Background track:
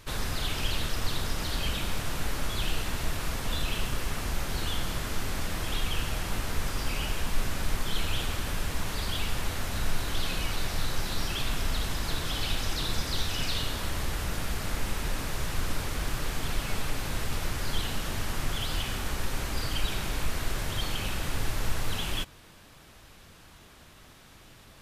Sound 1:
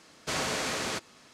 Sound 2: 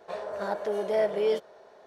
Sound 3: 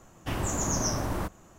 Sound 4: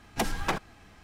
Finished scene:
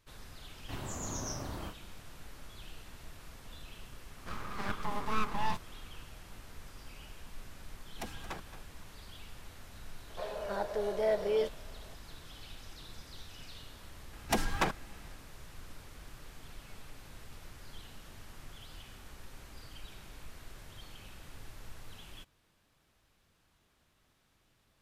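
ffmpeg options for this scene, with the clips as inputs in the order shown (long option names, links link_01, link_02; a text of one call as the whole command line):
ffmpeg -i bed.wav -i cue0.wav -i cue1.wav -i cue2.wav -i cue3.wav -filter_complex "[2:a]asplit=2[link_01][link_02];[4:a]asplit=2[link_03][link_04];[0:a]volume=-19dB[link_05];[3:a]asplit=2[link_06][link_07];[link_07]adelay=29,volume=-3dB[link_08];[link_06][link_08]amix=inputs=2:normalize=0[link_09];[link_01]aeval=exprs='abs(val(0))':channel_layout=same[link_10];[link_03]aecho=1:1:223:0.251[link_11];[link_09]atrim=end=1.58,asetpts=PTS-STARTPTS,volume=-12.5dB,afade=type=in:duration=0.004:curve=hsin,afade=type=out:start_time=1.576:duration=0.004:curve=hsin,adelay=420[link_12];[link_10]atrim=end=1.86,asetpts=PTS-STARTPTS,volume=-3dB,afade=type=in:duration=0.004:curve=hsin,afade=type=out:start_time=1.856:duration=0.004:curve=hsin,adelay=4180[link_13];[link_11]atrim=end=1.03,asetpts=PTS-STARTPTS,volume=-14dB,afade=type=in:duration=0.004:curve=hsin,afade=type=out:start_time=1.026:duration=0.004:curve=hsin,adelay=7820[link_14];[link_02]atrim=end=1.86,asetpts=PTS-STARTPTS,volume=-4.5dB,afade=type=in:duration=0.004:curve=hsin,afade=type=out:start_time=1.856:duration=0.004:curve=hsin,adelay=10090[link_15];[link_04]atrim=end=1.03,asetpts=PTS-STARTPTS,volume=-1.5dB,afade=type=in:duration=0.004:curve=hsin,afade=type=out:start_time=1.026:duration=0.004:curve=hsin,adelay=14130[link_16];[link_05][link_12][link_13][link_14][link_15][link_16]amix=inputs=6:normalize=0" out.wav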